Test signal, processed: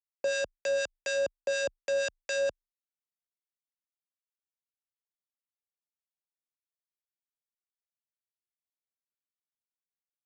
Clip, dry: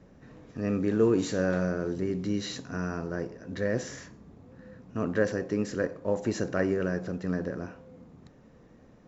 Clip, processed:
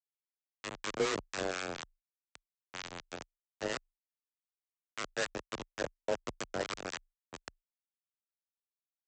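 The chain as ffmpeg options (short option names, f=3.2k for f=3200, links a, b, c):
-filter_complex "[0:a]asplit=2[a][b];[b]acompressor=threshold=-41dB:ratio=4,volume=-0.5dB[c];[a][c]amix=inputs=2:normalize=0,bass=f=250:g=-14,treble=f=4k:g=-6,aresample=16000,acrusher=bits=3:mix=0:aa=0.000001,aresample=44100,afreqshift=25,acrossover=split=1000[d][e];[d]aeval=exprs='val(0)*(1-0.7/2+0.7/2*cos(2*PI*4.1*n/s))':c=same[f];[e]aeval=exprs='val(0)*(1-0.7/2-0.7/2*cos(2*PI*4.1*n/s))':c=same[g];[f][g]amix=inputs=2:normalize=0,agate=range=-33dB:threshold=-53dB:ratio=3:detection=peak,volume=-5dB"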